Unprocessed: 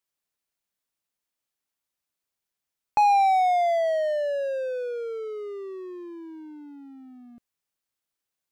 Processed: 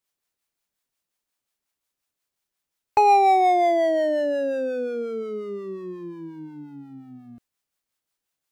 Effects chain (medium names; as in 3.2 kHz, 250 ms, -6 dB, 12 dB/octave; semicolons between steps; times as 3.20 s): harmony voices -12 st -9 dB; harmonic tremolo 5.6 Hz, depth 50%, crossover 560 Hz; trim +5 dB